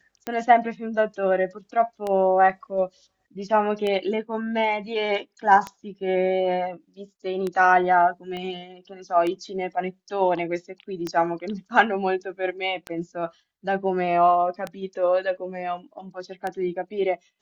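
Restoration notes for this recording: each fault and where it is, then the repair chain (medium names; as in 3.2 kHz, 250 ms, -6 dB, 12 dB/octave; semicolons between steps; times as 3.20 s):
tick 33 1/3 rpm -15 dBFS
8.37 s: pop -22 dBFS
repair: de-click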